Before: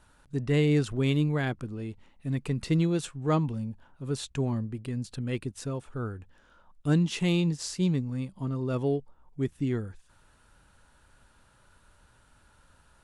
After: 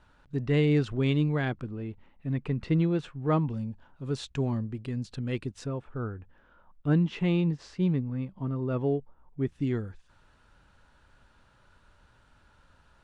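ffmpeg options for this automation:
ffmpeg -i in.wav -af "asetnsamples=nb_out_samples=441:pad=0,asendcmd='1.69 lowpass f 2600;3.5 lowpass f 5500;5.66 lowpass f 2300;9.47 lowpass f 5100',lowpass=4100" out.wav

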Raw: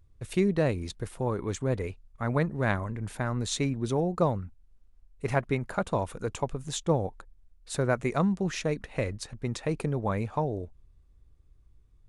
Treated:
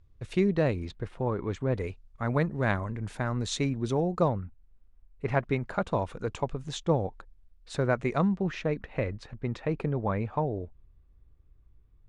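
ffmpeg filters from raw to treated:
ffmpeg -i in.wav -af "asetnsamples=nb_out_samples=441:pad=0,asendcmd='0.85 lowpass f 3100;1.76 lowpass f 6900;4.28 lowpass f 2900;5.34 lowpass f 4900;8.28 lowpass f 2800',lowpass=5200" out.wav

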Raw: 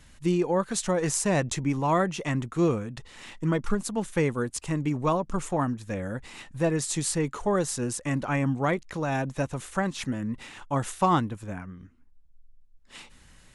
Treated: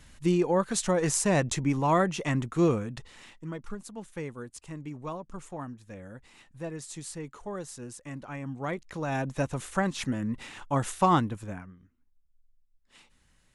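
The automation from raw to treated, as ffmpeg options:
ffmpeg -i in.wav -af "volume=12dB,afade=type=out:start_time=2.92:duration=0.48:silence=0.251189,afade=type=in:start_time=8.43:duration=1.07:silence=0.251189,afade=type=out:start_time=11.39:duration=0.4:silence=0.266073" out.wav

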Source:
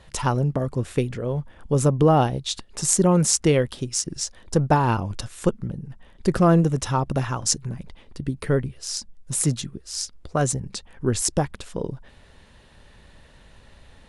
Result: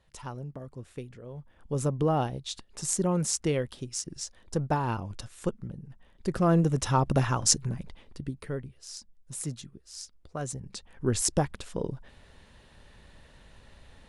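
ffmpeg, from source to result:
ffmpeg -i in.wav -af "volume=9dB,afade=type=in:start_time=1.31:duration=0.49:silence=0.398107,afade=type=in:start_time=6.33:duration=0.77:silence=0.375837,afade=type=out:start_time=7.6:duration=0.9:silence=0.237137,afade=type=in:start_time=10.45:duration=0.74:silence=0.334965" out.wav

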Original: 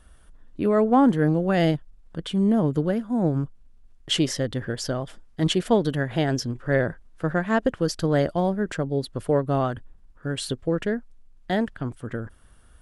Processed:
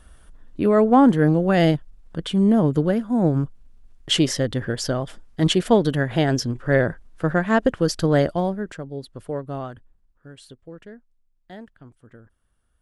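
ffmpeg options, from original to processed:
ffmpeg -i in.wav -af "volume=3.5dB,afade=type=out:start_time=8.17:duration=0.6:silence=0.298538,afade=type=out:start_time=9.53:duration=0.86:silence=0.354813" out.wav

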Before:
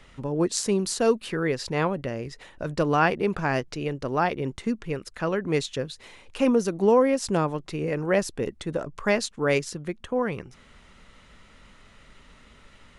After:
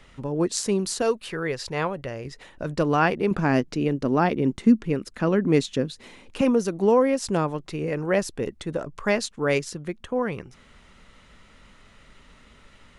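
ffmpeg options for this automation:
ffmpeg -i in.wav -af "asetnsamples=nb_out_samples=441:pad=0,asendcmd='1.02 equalizer g -6.5;2.25 equalizer g 2.5;3.31 equalizer g 11;6.41 equalizer g 0.5',equalizer=frequency=240:width_type=o:width=1.2:gain=0.5" out.wav

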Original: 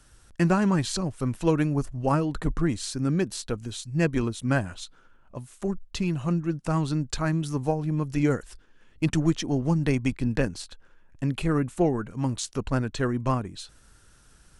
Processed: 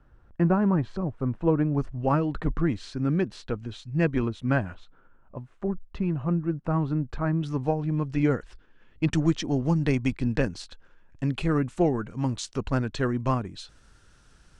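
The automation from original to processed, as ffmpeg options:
ffmpeg -i in.wav -af "asetnsamples=nb_out_samples=441:pad=0,asendcmd='1.75 lowpass f 2900;4.75 lowpass f 1500;7.41 lowpass f 3500;9.13 lowpass f 6100',lowpass=1200" out.wav

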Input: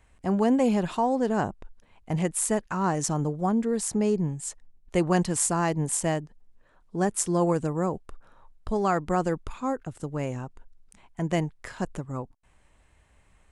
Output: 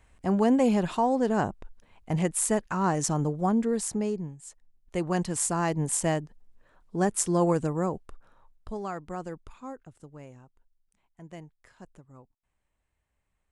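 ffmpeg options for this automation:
ffmpeg -i in.wav -af "volume=12.5dB,afade=type=out:start_time=3.67:duration=0.7:silence=0.237137,afade=type=in:start_time=4.37:duration=1.66:silence=0.237137,afade=type=out:start_time=7.6:duration=1.32:silence=0.281838,afade=type=out:start_time=9.57:duration=0.88:silence=0.446684" out.wav

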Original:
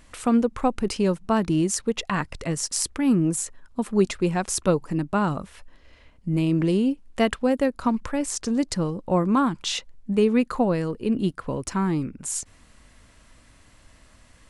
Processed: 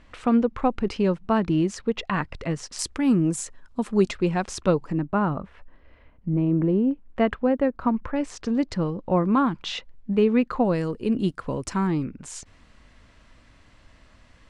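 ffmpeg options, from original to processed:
ffmpeg -i in.wav -af "asetnsamples=nb_out_samples=441:pad=0,asendcmd='2.79 lowpass f 7500;4.11 lowpass f 4600;4.92 lowpass f 1900;6.29 lowpass f 1100;6.91 lowpass f 1900;8.16 lowpass f 3400;10.65 lowpass f 8200;11.87 lowpass f 4700',lowpass=3500" out.wav

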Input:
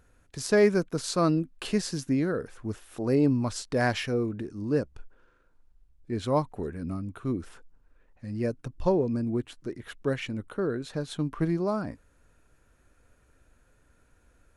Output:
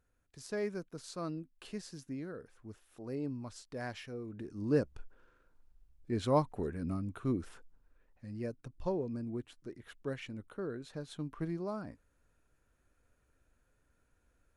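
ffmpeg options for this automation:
ffmpeg -i in.wav -af "volume=-3dB,afade=type=in:start_time=4.24:duration=0.48:silence=0.237137,afade=type=out:start_time=7.29:duration=1.2:silence=0.421697" out.wav

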